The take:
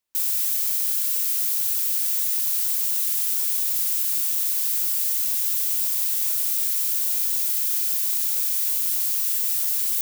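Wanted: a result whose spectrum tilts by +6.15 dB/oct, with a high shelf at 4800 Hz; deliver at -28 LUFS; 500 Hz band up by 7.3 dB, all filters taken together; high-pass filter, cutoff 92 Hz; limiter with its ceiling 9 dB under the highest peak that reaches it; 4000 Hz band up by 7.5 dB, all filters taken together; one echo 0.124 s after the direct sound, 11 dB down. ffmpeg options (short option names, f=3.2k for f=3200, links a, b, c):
-af "highpass=92,equalizer=f=500:t=o:g=9,equalizer=f=4k:t=o:g=6,highshelf=f=4.8k:g=6,alimiter=limit=-13dB:level=0:latency=1,aecho=1:1:124:0.282,volume=-9dB"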